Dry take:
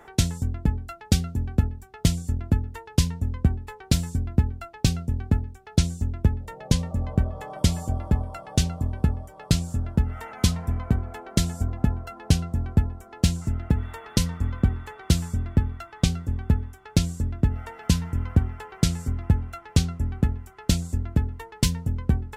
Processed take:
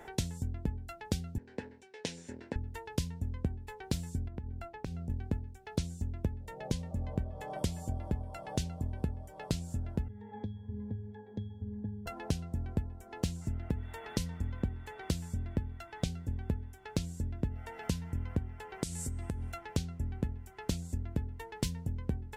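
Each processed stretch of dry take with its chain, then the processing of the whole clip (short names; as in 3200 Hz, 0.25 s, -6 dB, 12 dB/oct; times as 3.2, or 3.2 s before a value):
1.38–2.56 minimum comb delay 0.31 ms + speaker cabinet 390–7200 Hz, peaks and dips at 470 Hz +4 dB, 710 Hz -10 dB, 1200 Hz -6 dB, 1700 Hz +5 dB, 3300 Hz -6 dB, 6500 Hz -6 dB
4.28–5.1 high shelf 2200 Hz -10 dB + compressor 4:1, threshold -35 dBFS
10.08–12.06 air absorption 89 m + octave resonator G#, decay 0.46 s + three-band squash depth 100%
18.83–19.52 bell 8900 Hz +14.5 dB 1.2 oct + de-hum 379.9 Hz, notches 29 + compressor 3:1, threshold -28 dBFS
whole clip: bell 1200 Hz -11.5 dB 0.31 oct; compressor 2.5:1, threshold -36 dBFS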